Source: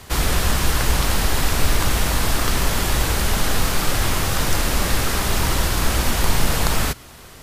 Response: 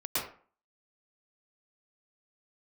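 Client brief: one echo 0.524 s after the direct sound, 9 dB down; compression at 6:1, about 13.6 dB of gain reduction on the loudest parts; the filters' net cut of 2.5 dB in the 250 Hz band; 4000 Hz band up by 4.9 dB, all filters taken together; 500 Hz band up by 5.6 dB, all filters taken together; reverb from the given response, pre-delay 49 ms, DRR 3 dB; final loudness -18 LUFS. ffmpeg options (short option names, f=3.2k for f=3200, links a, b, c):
-filter_complex "[0:a]equalizer=f=250:t=o:g=-6.5,equalizer=f=500:t=o:g=8.5,equalizer=f=4k:t=o:g=6,acompressor=threshold=-26dB:ratio=6,aecho=1:1:524:0.355,asplit=2[a][b];[1:a]atrim=start_sample=2205,adelay=49[c];[b][c]afir=irnorm=-1:irlink=0,volume=-10dB[d];[a][d]amix=inputs=2:normalize=0,volume=10dB"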